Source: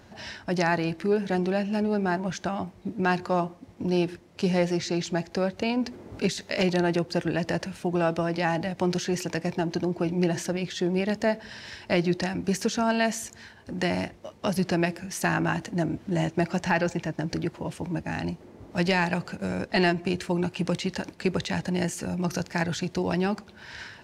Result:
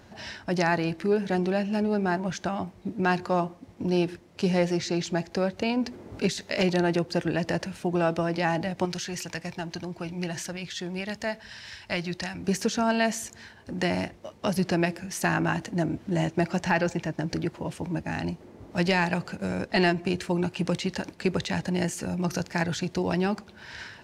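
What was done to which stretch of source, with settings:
0:08.85–0:12.41: parametric band 340 Hz −10.5 dB 2.4 octaves

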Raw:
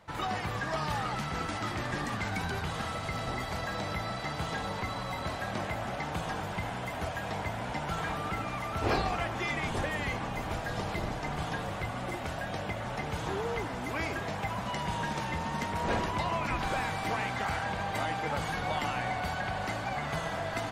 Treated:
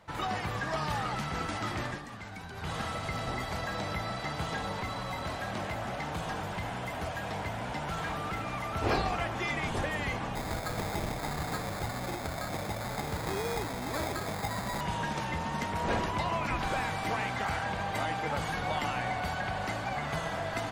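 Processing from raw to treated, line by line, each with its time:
0:01.85–0:02.71: duck −10 dB, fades 0.16 s
0:04.82–0:08.50: hard clipping −30 dBFS
0:10.35–0:14.81: sample-rate reduction 2,900 Hz

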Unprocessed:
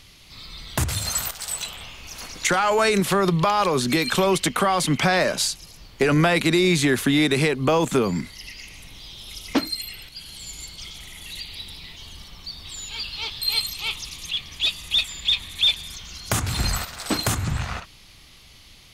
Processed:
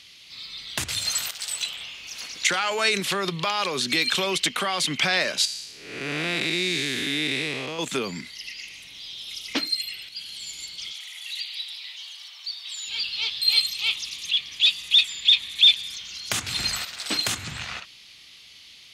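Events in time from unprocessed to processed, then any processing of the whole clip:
0:05.45–0:07.79: spectrum smeared in time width 310 ms
0:10.92–0:12.87: high-pass filter 710 Hz 24 dB per octave
whole clip: meter weighting curve D; level −7.5 dB

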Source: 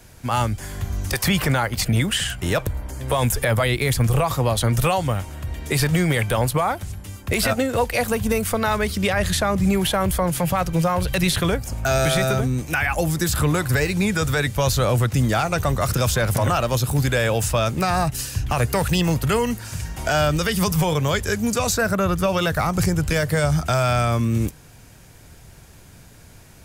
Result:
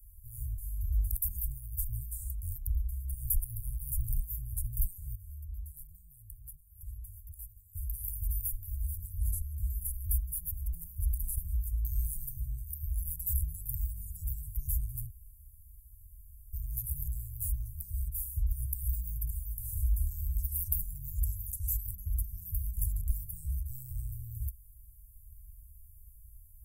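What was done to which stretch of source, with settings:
0:05.15–0:07.75: downward compressor, threshold −32 dBFS
0:15.10–0:16.53: fill with room tone
0:19.58–0:23.02: envelope flattener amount 50%
whole clip: inverse Chebyshev band-stop filter 270–3,700 Hz, stop band 70 dB

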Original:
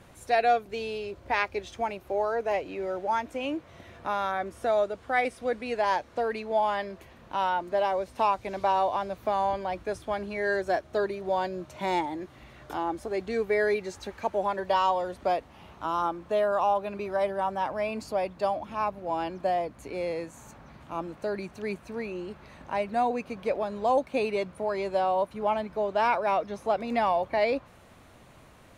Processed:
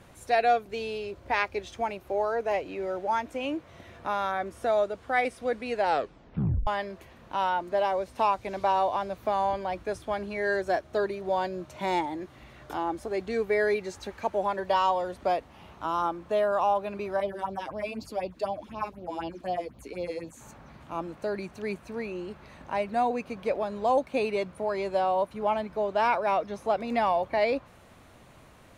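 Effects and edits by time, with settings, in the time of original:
0:05.78: tape stop 0.89 s
0:17.20–0:20.41: all-pass phaser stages 4, 4 Hz, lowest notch 110–1,900 Hz

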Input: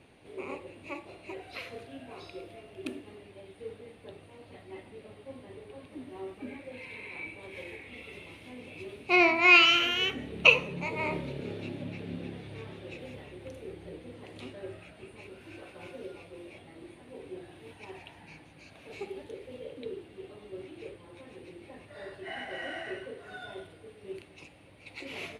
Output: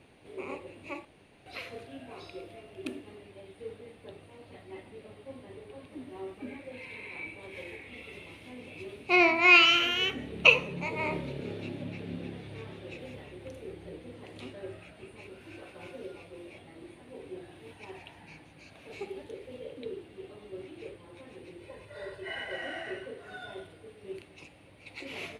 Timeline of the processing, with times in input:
0:01.05–0:01.46: fill with room tone
0:21.59–0:22.56: comb filter 2 ms, depth 62%

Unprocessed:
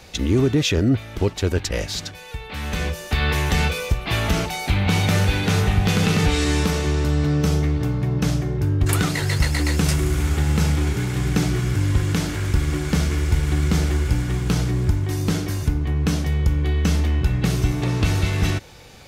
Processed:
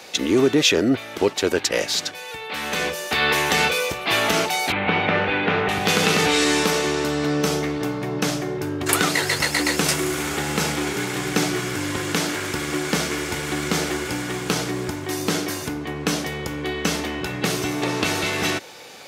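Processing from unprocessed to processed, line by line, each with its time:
0:04.72–0:05.69: low-pass filter 2,800 Hz 24 dB per octave
whole clip: high-pass filter 330 Hz 12 dB per octave; level +5.5 dB

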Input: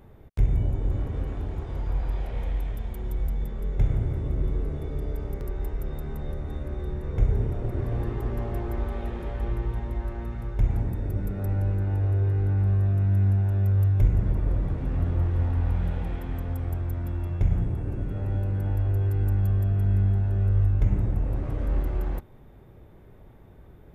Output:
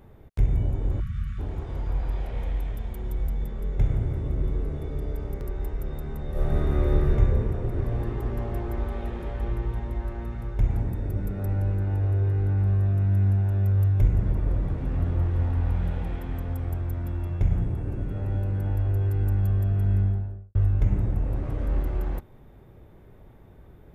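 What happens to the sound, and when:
0:01.01–0:01.39: time-frequency box erased 230–1,100 Hz
0:06.30–0:07.12: thrown reverb, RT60 2.5 s, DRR −10 dB
0:19.93–0:20.55: fade out and dull

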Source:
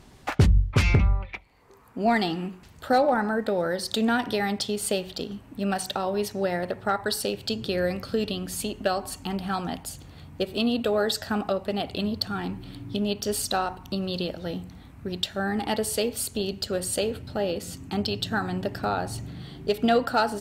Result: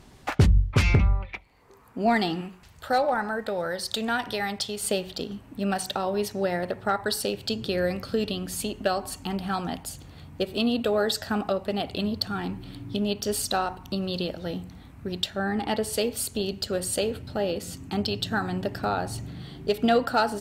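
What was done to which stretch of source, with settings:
0:02.41–0:04.84: parametric band 270 Hz −8 dB 1.6 octaves
0:15.30–0:15.93: high-shelf EQ 6,500 Hz −7.5 dB

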